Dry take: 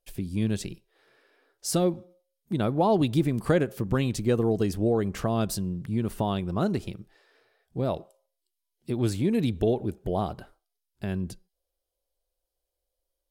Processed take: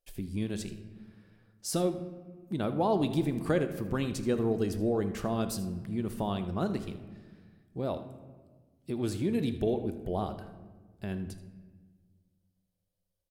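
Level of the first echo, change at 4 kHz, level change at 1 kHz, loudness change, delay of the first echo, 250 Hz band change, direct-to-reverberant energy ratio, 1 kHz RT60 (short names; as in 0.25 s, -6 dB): -15.5 dB, -4.5 dB, -4.5 dB, -5.0 dB, 79 ms, -4.0 dB, 8.5 dB, 1.3 s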